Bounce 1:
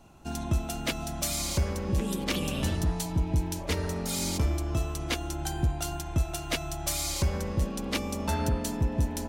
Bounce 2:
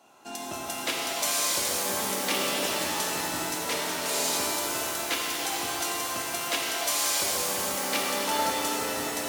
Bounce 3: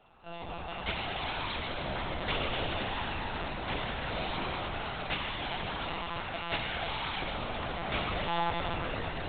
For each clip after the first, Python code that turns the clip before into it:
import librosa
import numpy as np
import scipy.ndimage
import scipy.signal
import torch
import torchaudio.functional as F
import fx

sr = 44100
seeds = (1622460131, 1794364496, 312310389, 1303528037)

y1 = scipy.signal.sosfilt(scipy.signal.butter(2, 470.0, 'highpass', fs=sr, output='sos'), x)
y1 = fx.rev_shimmer(y1, sr, seeds[0], rt60_s=3.5, semitones=7, shimmer_db=-2, drr_db=-2.5)
y1 = y1 * librosa.db_to_amplitude(1.0)
y2 = fx.lpc_monotone(y1, sr, seeds[1], pitch_hz=170.0, order=10)
y2 = y2 * librosa.db_to_amplitude(-3.0)